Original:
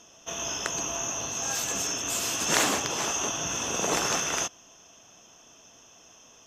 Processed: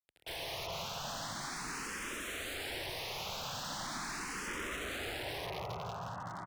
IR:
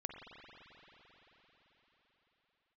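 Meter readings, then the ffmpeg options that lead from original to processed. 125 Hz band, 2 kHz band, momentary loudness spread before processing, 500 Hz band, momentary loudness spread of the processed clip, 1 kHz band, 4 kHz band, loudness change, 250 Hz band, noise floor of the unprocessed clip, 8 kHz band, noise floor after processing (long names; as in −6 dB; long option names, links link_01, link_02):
−4.0 dB, −7.0 dB, 7 LU, −9.0 dB, 3 LU, −8.0 dB, −8.5 dB, −12.5 dB, −10.0 dB, −55 dBFS, −18.5 dB, −45 dBFS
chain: -filter_complex "[0:a]asubboost=boost=10:cutoff=95,acrossover=split=220[link_01][link_02];[link_01]asoftclip=type=tanh:threshold=-34dB[link_03];[link_03][link_02]amix=inputs=2:normalize=0,asplit=2[link_04][link_05];[link_05]adelay=985,lowpass=frequency=1200:poles=1,volume=-9dB,asplit=2[link_06][link_07];[link_07]adelay=985,lowpass=frequency=1200:poles=1,volume=0.3,asplit=2[link_08][link_09];[link_09]adelay=985,lowpass=frequency=1200:poles=1,volume=0.3[link_10];[link_04][link_06][link_08][link_10]amix=inputs=4:normalize=0,acrossover=split=2800[link_11][link_12];[link_12]acompressor=threshold=-38dB:ratio=4:attack=1:release=60[link_13];[link_11][link_13]amix=inputs=2:normalize=0,lowpass=frequency=4300:width_type=q:width=4.1,acrusher=bits=6:mix=0:aa=0.000001,highpass=frequency=54:poles=1,acompressor=threshold=-31dB:ratio=6[link_14];[1:a]atrim=start_sample=2205,asetrate=23814,aresample=44100[link_15];[link_14][link_15]afir=irnorm=-1:irlink=0,aeval=exprs='(mod(42.2*val(0)+1,2)-1)/42.2':channel_layout=same,aemphasis=mode=reproduction:type=50kf,asplit=2[link_16][link_17];[link_17]afreqshift=0.4[link_18];[link_16][link_18]amix=inputs=2:normalize=1,volume=3.5dB"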